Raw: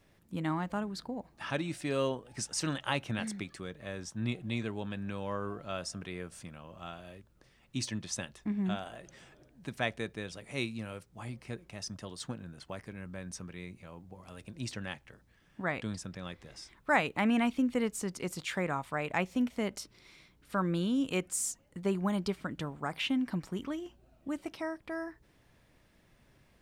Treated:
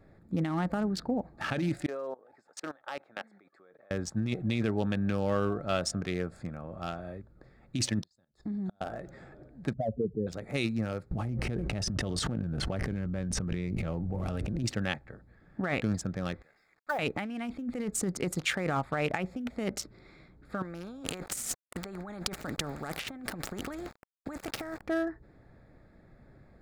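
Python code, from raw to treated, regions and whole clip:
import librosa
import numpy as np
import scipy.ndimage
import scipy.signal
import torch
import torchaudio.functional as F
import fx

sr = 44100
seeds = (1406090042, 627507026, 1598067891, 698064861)

y = fx.chain(x, sr, fx.highpass(hz=640.0, slope=12),
    fx.high_shelf(hz=2000.0, db=-11.5),
    fx.level_steps(step_db=22), at=(1.86, 3.91))
y = fx.chain(y, sr, fx.high_shelf_res(hz=3400.0, db=8.5, q=3.0),
    fx.level_steps(step_db=14),
    fx.gate_flip(shuts_db=-34.0, range_db=-33), at=(8.02, 8.81))
y = fx.chain(y, sr, fx.spec_expand(power=3.0),
    fx.steep_lowpass(hz=960.0, slope=36), at=(9.73, 10.27))
y = fx.chain(y, sr, fx.tilt_eq(slope=-2.0),
    fx.env_flatten(amount_pct=100), at=(11.11, 14.63))
y = fx.chain(y, sr, fx.high_shelf(hz=2300.0, db=-9.5),
    fx.auto_wah(base_hz=600.0, top_hz=2400.0, q=2.7, full_db=-24.0, direction='down'),
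    fx.quant_companded(bits=6), at=(16.42, 16.99))
y = fx.chain(y, sr, fx.sample_gate(floor_db=-53.5),
    fx.over_compress(threshold_db=-39.0, ratio=-1.0),
    fx.spectral_comp(ratio=2.0), at=(20.62, 24.82))
y = fx.wiener(y, sr, points=15)
y = fx.notch(y, sr, hz=1000.0, q=5.4)
y = fx.over_compress(y, sr, threshold_db=-36.0, ratio=-1.0)
y = y * librosa.db_to_amplitude(5.5)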